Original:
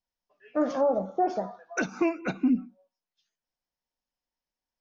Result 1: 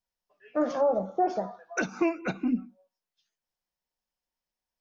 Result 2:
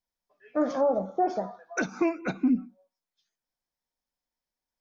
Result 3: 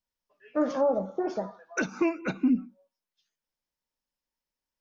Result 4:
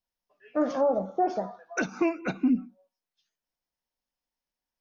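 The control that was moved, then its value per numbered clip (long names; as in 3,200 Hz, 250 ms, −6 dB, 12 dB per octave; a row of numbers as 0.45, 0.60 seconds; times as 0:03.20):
notch filter, centre frequency: 270, 2,800, 720, 7,400 Hertz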